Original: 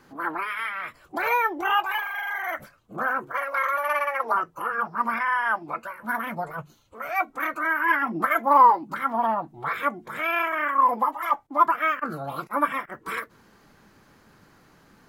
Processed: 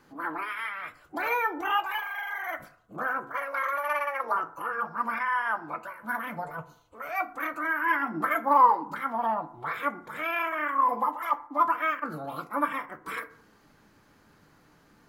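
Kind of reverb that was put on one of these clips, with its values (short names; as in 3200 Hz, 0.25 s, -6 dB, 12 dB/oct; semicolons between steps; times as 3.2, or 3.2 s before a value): FDN reverb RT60 0.62 s, low-frequency decay 0.8×, high-frequency decay 0.45×, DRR 10 dB; gain -4.5 dB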